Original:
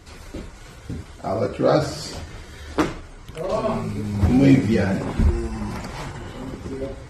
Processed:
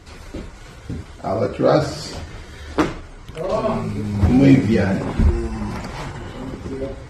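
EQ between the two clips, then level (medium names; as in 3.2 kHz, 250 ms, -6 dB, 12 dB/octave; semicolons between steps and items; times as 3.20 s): treble shelf 9 kHz -7 dB; +2.5 dB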